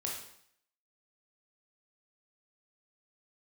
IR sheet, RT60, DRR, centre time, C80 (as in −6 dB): 0.65 s, −2.5 dB, 43 ms, 6.5 dB